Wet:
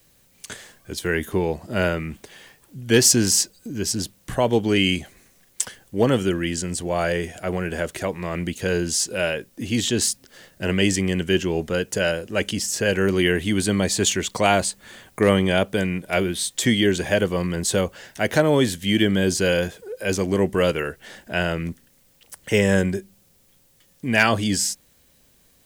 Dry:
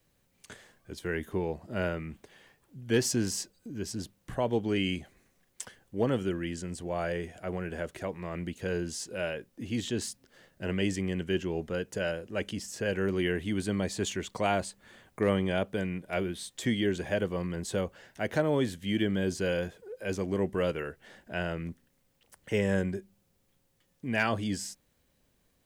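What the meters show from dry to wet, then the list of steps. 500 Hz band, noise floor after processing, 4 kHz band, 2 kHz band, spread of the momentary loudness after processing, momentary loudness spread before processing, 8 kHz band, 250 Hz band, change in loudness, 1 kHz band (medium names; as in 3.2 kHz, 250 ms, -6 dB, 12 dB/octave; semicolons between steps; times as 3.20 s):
+9.0 dB, -59 dBFS, +14.0 dB, +11.0 dB, 11 LU, 12 LU, +16.5 dB, +9.0 dB, +10.5 dB, +9.5 dB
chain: treble shelf 3.1 kHz +8.5 dB; trim +9 dB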